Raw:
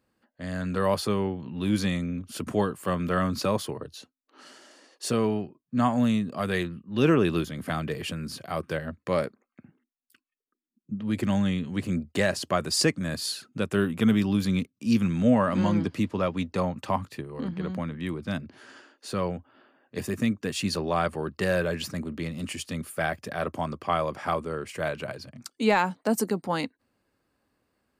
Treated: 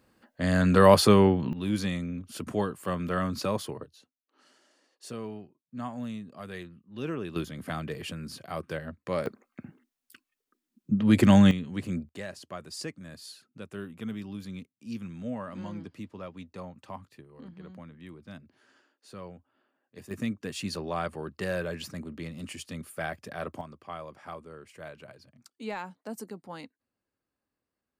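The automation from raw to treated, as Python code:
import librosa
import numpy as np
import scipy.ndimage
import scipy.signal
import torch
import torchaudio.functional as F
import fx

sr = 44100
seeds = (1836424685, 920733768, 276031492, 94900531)

y = fx.gain(x, sr, db=fx.steps((0.0, 8.0), (1.53, -3.5), (3.85, -13.0), (7.36, -4.5), (9.26, 7.5), (11.51, -4.0), (12.09, -14.5), (20.11, -6.0), (23.61, -14.0)))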